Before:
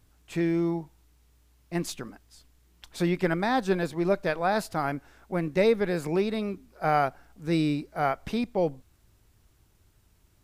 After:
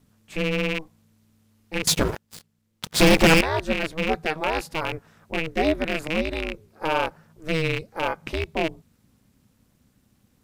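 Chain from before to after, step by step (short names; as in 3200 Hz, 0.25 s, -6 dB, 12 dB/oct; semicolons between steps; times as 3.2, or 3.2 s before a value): rattling part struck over -32 dBFS, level -17 dBFS; ring modulator 160 Hz; 1.87–3.41 sample leveller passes 5; gain +3 dB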